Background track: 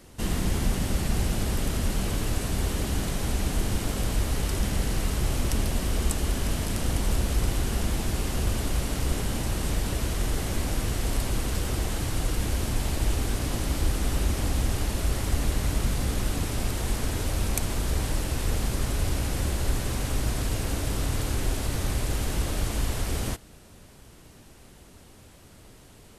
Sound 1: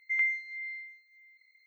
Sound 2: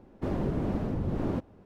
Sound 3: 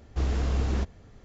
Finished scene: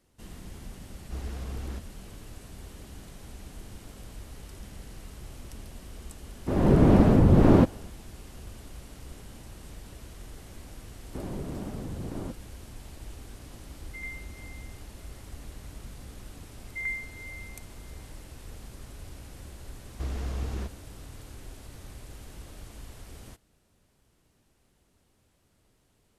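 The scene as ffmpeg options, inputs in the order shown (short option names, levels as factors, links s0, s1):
-filter_complex "[3:a]asplit=2[s0][s1];[2:a]asplit=2[s2][s3];[1:a]asplit=2[s4][s5];[0:a]volume=0.133[s6];[s2]dynaudnorm=f=150:g=5:m=6.31[s7];[s5]lowpass=f=1400:p=1[s8];[s0]atrim=end=1.24,asetpts=PTS-STARTPTS,volume=0.316,afade=t=in:d=0.004:c=hsin,afade=t=out:st=1.236:d=0.004:c=hsin,adelay=950[s9];[s7]atrim=end=1.65,asetpts=PTS-STARTPTS,volume=0.75,afade=t=in:d=0.004:c=hsin,afade=t=out:st=1.646:d=0.004:c=hsin,adelay=6250[s10];[s3]atrim=end=1.65,asetpts=PTS-STARTPTS,volume=0.473,afade=t=in:d=0.004:c=hsin,afade=t=out:st=1.646:d=0.004:c=hsin,adelay=10920[s11];[s4]atrim=end=1.66,asetpts=PTS-STARTPTS,volume=0.237,afade=t=in:d=0.004:c=hsin,afade=t=out:st=1.656:d=0.004:c=hsin,adelay=13840[s12];[s8]atrim=end=1.66,asetpts=PTS-STARTPTS,afade=t=in:d=0.004:c=hsin,afade=t=out:st=1.656:d=0.004:c=hsin,adelay=16660[s13];[s1]atrim=end=1.24,asetpts=PTS-STARTPTS,volume=0.473,afade=t=in:d=0.004:c=hsin,afade=t=out:st=1.236:d=0.004:c=hsin,adelay=19830[s14];[s6][s9][s10][s11][s12][s13][s14]amix=inputs=7:normalize=0"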